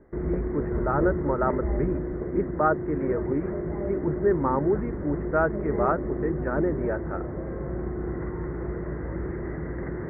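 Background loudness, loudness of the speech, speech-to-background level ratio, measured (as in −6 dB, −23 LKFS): −31.0 LKFS, −28.5 LKFS, 2.5 dB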